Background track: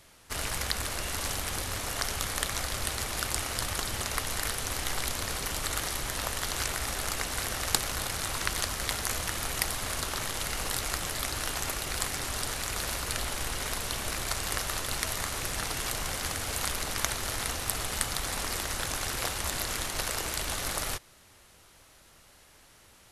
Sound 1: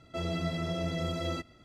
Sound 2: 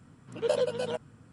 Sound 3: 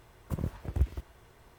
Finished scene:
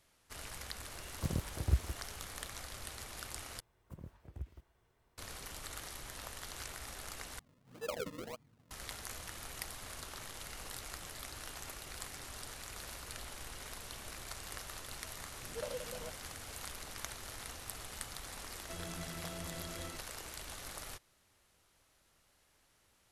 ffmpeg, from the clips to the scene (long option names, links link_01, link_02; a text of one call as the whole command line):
ffmpeg -i bed.wav -i cue0.wav -i cue1.wav -i cue2.wav -filter_complex "[3:a]asplit=2[link_01][link_02];[2:a]asplit=2[link_03][link_04];[0:a]volume=-14dB[link_05];[link_03]acrusher=samples=39:mix=1:aa=0.000001:lfo=1:lforange=39:lforate=1.7[link_06];[link_05]asplit=3[link_07][link_08][link_09];[link_07]atrim=end=3.604[link_10];[link_02]atrim=end=1.58,asetpts=PTS-STARTPTS,volume=-16.5dB[link_11];[link_08]atrim=start=5.176:end=7.394[link_12];[link_06]atrim=end=1.32,asetpts=PTS-STARTPTS,volume=-13dB[link_13];[link_09]atrim=start=8.706[link_14];[link_01]atrim=end=1.58,asetpts=PTS-STARTPTS,volume=-2.5dB,afade=type=in:duration=0.004:curve=hsin,afade=type=out:start_time=1.576:duration=0.004:curve=hsin,adelay=920[link_15];[link_04]atrim=end=1.32,asetpts=PTS-STARTPTS,volume=-15dB,afade=type=in:duration=0.004:curve=hsin,afade=type=out:start_time=1.316:duration=0.004:curve=hsin,adelay=15130[link_16];[1:a]atrim=end=1.64,asetpts=PTS-STARTPTS,volume=-13.5dB,afade=type=in:duration=0.004:curve=hsin,afade=type=out:start_time=1.636:duration=0.004:curve=hsin,adelay=18550[link_17];[link_10][link_11]acrossfade=duration=0.004:curve1=hsin:curve2=hsin[link_18];[link_18][link_12]acrossfade=duration=0.004:curve1=hsin:curve2=hsin[link_19];[link_19][link_13]acrossfade=duration=0.004:curve1=hsin:curve2=hsin[link_20];[link_20][link_14]acrossfade=duration=0.004:curve1=hsin:curve2=hsin[link_21];[link_21][link_15][link_16][link_17]amix=inputs=4:normalize=0" out.wav